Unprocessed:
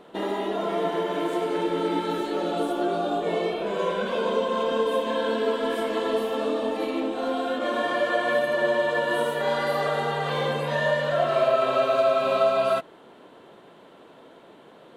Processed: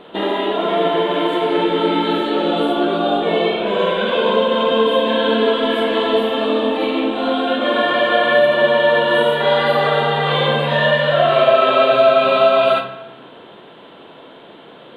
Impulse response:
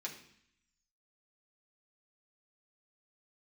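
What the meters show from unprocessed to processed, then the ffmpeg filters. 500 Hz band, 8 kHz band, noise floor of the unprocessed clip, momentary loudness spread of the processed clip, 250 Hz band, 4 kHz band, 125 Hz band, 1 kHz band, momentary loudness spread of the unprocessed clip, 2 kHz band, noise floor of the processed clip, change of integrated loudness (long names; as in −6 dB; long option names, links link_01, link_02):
+8.5 dB, can't be measured, −50 dBFS, 6 LU, +9.0 dB, +13.5 dB, +9.5 dB, +9.0 dB, 6 LU, +10.0 dB, −41 dBFS, +9.0 dB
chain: -filter_complex "[0:a]highshelf=frequency=4400:width_type=q:width=3:gain=-8.5,asplit=2[link_01][link_02];[1:a]atrim=start_sample=2205,asetrate=28665,aresample=44100,adelay=41[link_03];[link_02][link_03]afir=irnorm=-1:irlink=0,volume=-8dB[link_04];[link_01][link_04]amix=inputs=2:normalize=0,volume=7.5dB"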